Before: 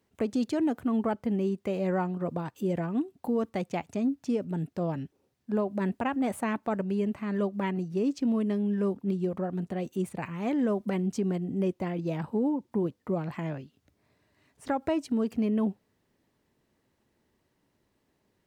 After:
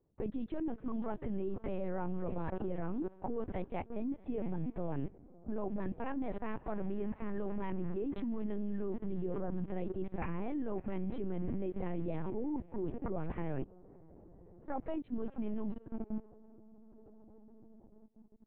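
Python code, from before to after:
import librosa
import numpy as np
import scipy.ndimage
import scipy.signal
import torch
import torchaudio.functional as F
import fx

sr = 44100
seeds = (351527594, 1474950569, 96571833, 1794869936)

y = fx.echo_diffused(x, sr, ms=624, feedback_pct=47, wet_db=-15)
y = fx.env_lowpass(y, sr, base_hz=690.0, full_db=-24.0)
y = fx.level_steps(y, sr, step_db=21)
y = fx.high_shelf(y, sr, hz=2900.0, db=-11.5)
y = fx.lpc_vocoder(y, sr, seeds[0], excitation='pitch_kept', order=10)
y = y * librosa.db_to_amplitude(7.0)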